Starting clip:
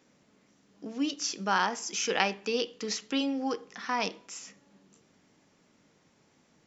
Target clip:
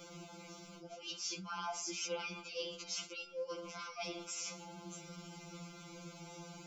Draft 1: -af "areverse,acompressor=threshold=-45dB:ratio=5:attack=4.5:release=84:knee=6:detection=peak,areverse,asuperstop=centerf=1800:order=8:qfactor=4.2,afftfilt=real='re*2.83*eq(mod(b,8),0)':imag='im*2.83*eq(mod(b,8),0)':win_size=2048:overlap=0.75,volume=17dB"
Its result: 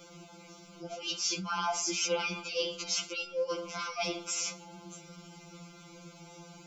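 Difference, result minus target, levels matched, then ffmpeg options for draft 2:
compressor: peak gain reduction -9 dB
-af "areverse,acompressor=threshold=-56.5dB:ratio=5:attack=4.5:release=84:knee=6:detection=peak,areverse,asuperstop=centerf=1800:order=8:qfactor=4.2,afftfilt=real='re*2.83*eq(mod(b,8),0)':imag='im*2.83*eq(mod(b,8),0)':win_size=2048:overlap=0.75,volume=17dB"

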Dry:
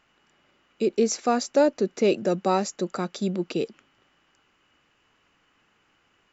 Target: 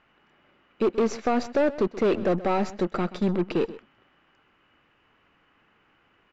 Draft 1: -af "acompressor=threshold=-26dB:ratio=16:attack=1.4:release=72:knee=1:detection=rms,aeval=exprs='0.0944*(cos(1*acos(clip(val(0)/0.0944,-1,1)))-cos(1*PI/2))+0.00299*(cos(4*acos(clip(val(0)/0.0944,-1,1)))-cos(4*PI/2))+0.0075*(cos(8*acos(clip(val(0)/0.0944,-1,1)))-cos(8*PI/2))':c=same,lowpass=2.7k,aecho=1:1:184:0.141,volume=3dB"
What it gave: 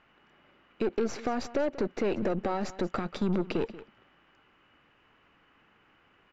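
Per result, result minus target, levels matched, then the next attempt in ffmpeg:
compressor: peak gain reduction +9.5 dB; echo 55 ms late
-af "acompressor=threshold=-16dB:ratio=16:attack=1.4:release=72:knee=1:detection=rms,aeval=exprs='0.0944*(cos(1*acos(clip(val(0)/0.0944,-1,1)))-cos(1*PI/2))+0.00299*(cos(4*acos(clip(val(0)/0.0944,-1,1)))-cos(4*PI/2))+0.0075*(cos(8*acos(clip(val(0)/0.0944,-1,1)))-cos(8*PI/2))':c=same,lowpass=2.7k,aecho=1:1:184:0.141,volume=3dB"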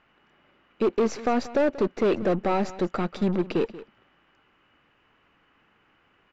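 echo 55 ms late
-af "acompressor=threshold=-16dB:ratio=16:attack=1.4:release=72:knee=1:detection=rms,aeval=exprs='0.0944*(cos(1*acos(clip(val(0)/0.0944,-1,1)))-cos(1*PI/2))+0.00299*(cos(4*acos(clip(val(0)/0.0944,-1,1)))-cos(4*PI/2))+0.0075*(cos(8*acos(clip(val(0)/0.0944,-1,1)))-cos(8*PI/2))':c=same,lowpass=2.7k,aecho=1:1:129:0.141,volume=3dB"

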